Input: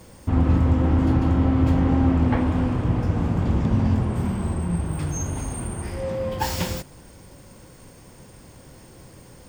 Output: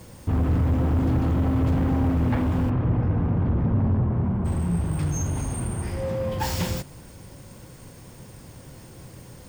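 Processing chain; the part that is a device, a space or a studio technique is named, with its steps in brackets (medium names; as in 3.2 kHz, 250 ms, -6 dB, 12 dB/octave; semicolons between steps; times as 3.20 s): open-reel tape (saturation -20 dBFS, distortion -10 dB; peaking EQ 120 Hz +5 dB 1.17 oct; white noise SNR 35 dB); 2.69–4.44 s: low-pass 2.3 kHz -> 1.3 kHz 12 dB/octave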